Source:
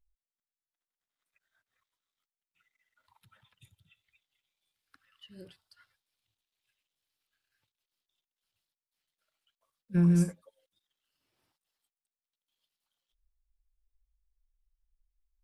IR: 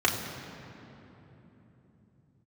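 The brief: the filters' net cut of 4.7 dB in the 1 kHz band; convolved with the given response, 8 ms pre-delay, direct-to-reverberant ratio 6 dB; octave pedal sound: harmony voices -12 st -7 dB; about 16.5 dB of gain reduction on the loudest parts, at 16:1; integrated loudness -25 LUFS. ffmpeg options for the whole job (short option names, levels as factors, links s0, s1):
-filter_complex "[0:a]equalizer=f=1000:t=o:g=-6.5,acompressor=threshold=0.0141:ratio=16,asplit=2[s0][s1];[1:a]atrim=start_sample=2205,adelay=8[s2];[s1][s2]afir=irnorm=-1:irlink=0,volume=0.1[s3];[s0][s3]amix=inputs=2:normalize=0,asplit=2[s4][s5];[s5]asetrate=22050,aresample=44100,atempo=2,volume=0.447[s6];[s4][s6]amix=inputs=2:normalize=0,volume=15.8"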